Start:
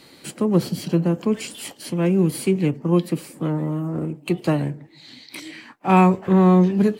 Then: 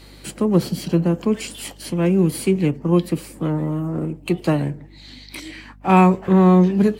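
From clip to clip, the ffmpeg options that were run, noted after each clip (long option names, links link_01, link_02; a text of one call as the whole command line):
ffmpeg -i in.wav -af "aeval=exprs='val(0)+0.00501*(sin(2*PI*50*n/s)+sin(2*PI*2*50*n/s)/2+sin(2*PI*3*50*n/s)/3+sin(2*PI*4*50*n/s)/4+sin(2*PI*5*50*n/s)/5)':channel_layout=same,volume=1.5dB" out.wav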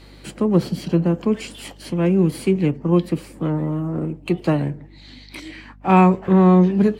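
ffmpeg -i in.wav -af "highshelf=frequency=6200:gain=-10.5" out.wav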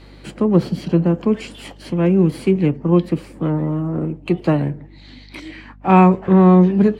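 ffmpeg -i in.wav -af "aemphasis=mode=reproduction:type=cd,volume=2dB" out.wav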